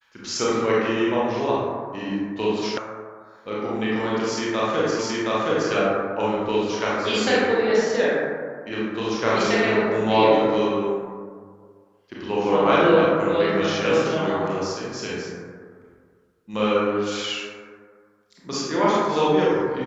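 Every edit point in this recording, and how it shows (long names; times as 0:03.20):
0:02.78: cut off before it has died away
0:04.99: the same again, the last 0.72 s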